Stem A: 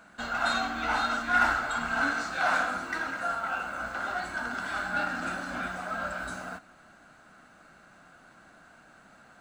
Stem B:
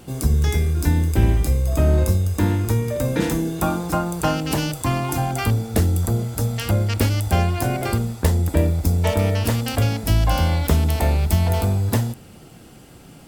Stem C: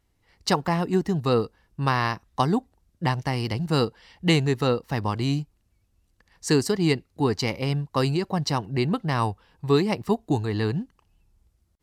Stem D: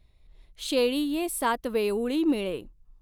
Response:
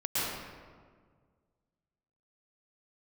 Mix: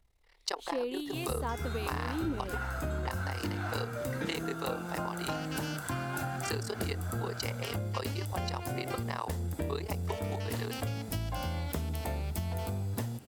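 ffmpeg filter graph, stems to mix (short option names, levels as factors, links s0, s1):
-filter_complex "[0:a]dynaudnorm=f=200:g=5:m=2.99,adelay=1200,volume=0.15[s0];[1:a]highpass=71,adelay=1050,volume=0.355[s1];[2:a]highpass=f=410:w=0.5412,highpass=f=410:w=1.3066,tremolo=f=37:d=0.974,volume=1[s2];[3:a]dynaudnorm=f=150:g=7:m=3.55,acrossover=split=1500[s3][s4];[s3]aeval=exprs='val(0)*(1-0.7/2+0.7/2*cos(2*PI*1.3*n/s))':c=same[s5];[s4]aeval=exprs='val(0)*(1-0.7/2-0.7/2*cos(2*PI*1.3*n/s))':c=same[s6];[s5][s6]amix=inputs=2:normalize=0,volume=0.316[s7];[s0][s1][s2][s7]amix=inputs=4:normalize=0,acompressor=threshold=0.0251:ratio=4"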